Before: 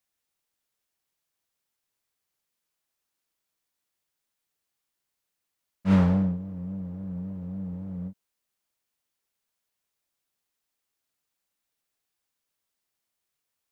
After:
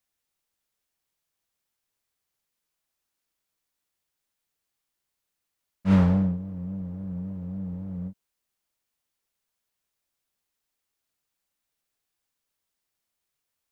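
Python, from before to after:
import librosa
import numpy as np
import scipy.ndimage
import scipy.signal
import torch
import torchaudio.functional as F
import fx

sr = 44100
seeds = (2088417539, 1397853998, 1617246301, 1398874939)

y = fx.low_shelf(x, sr, hz=76.0, db=5.5)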